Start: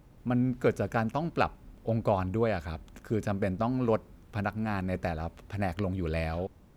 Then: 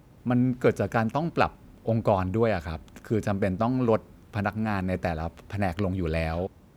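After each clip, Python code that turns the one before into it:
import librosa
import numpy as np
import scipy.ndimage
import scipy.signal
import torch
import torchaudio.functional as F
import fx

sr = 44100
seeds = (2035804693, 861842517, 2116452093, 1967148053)

y = scipy.signal.sosfilt(scipy.signal.butter(2, 59.0, 'highpass', fs=sr, output='sos'), x)
y = y * librosa.db_to_amplitude(4.0)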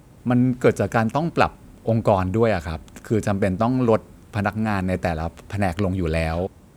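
y = fx.peak_eq(x, sr, hz=8400.0, db=7.5, octaves=0.63)
y = y * librosa.db_to_amplitude(5.0)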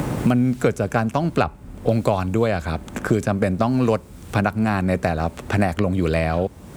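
y = fx.band_squash(x, sr, depth_pct=100)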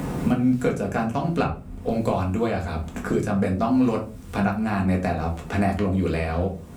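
y = fx.room_shoebox(x, sr, seeds[0], volume_m3=200.0, walls='furnished', distance_m=1.8)
y = y * librosa.db_to_amplitude(-7.5)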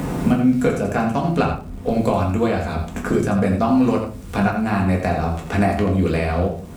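y = fx.dmg_crackle(x, sr, seeds[1], per_s=200.0, level_db=-44.0)
y = y + 10.0 ** (-8.5 / 20.0) * np.pad(y, (int(84 * sr / 1000.0), 0))[:len(y)]
y = y * librosa.db_to_amplitude(4.0)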